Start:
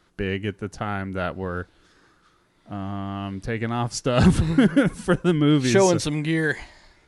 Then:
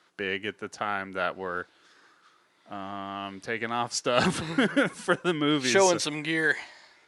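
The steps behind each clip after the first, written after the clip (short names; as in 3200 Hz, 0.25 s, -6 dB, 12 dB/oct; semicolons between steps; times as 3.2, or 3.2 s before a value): weighting filter A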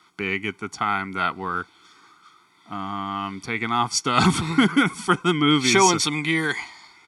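comb 0.9 ms, depth 95%; gain +4 dB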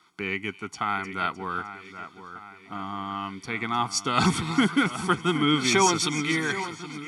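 split-band echo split 2800 Hz, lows 0.772 s, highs 0.306 s, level -12 dB; gain -4 dB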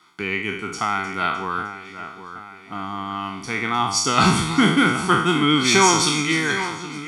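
spectral trails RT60 0.68 s; gain +3.5 dB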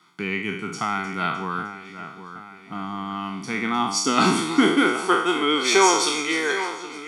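high-pass sweep 150 Hz -> 450 Hz, 3.21–5.21; gain -3 dB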